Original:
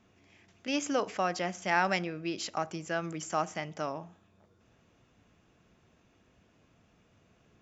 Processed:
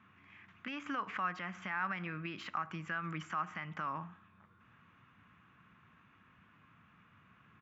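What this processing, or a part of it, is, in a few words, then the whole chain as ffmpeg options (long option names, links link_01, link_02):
broadcast voice chain: -af "highpass=98,deesser=0.95,acompressor=threshold=-33dB:ratio=4,equalizer=frequency=3700:width_type=o:width=2.4:gain=6,alimiter=level_in=2.5dB:limit=-24dB:level=0:latency=1:release=136,volume=-2.5dB,firequalizer=gain_entry='entry(180,0);entry(400,-12);entry(660,-12);entry(1100,7);entry(5000,-23)':delay=0.05:min_phase=1,volume=2dB"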